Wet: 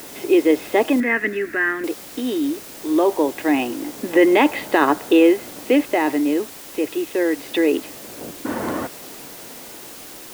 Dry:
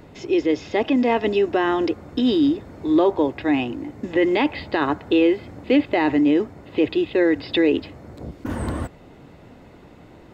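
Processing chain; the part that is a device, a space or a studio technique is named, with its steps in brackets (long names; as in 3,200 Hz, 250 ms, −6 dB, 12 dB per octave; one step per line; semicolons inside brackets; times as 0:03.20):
shortwave radio (band-pass filter 280–2,900 Hz; amplitude tremolo 0.22 Hz, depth 61%; white noise bed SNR 19 dB)
0:01.00–0:01.84: drawn EQ curve 220 Hz 0 dB, 870 Hz −15 dB, 1,800 Hz +13 dB, 3,100 Hz −10 dB
level +6.5 dB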